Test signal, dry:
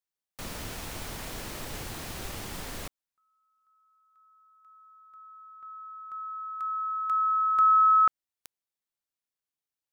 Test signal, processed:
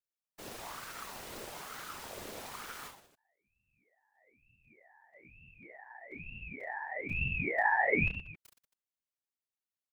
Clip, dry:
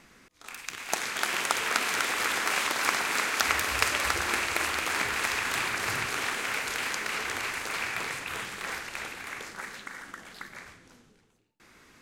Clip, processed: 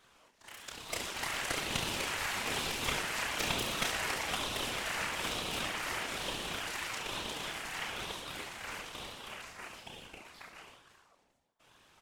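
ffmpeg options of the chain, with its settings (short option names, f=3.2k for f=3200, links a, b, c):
-af "aecho=1:1:30|69|119.7|185.6|271.3:0.631|0.398|0.251|0.158|0.1,afftfilt=real='hypot(re,im)*cos(2*PI*random(0))':imag='hypot(re,im)*sin(2*PI*random(1))':win_size=512:overlap=0.75,aeval=exprs='val(0)*sin(2*PI*900*n/s+900*0.55/1.1*sin(2*PI*1.1*n/s))':c=same"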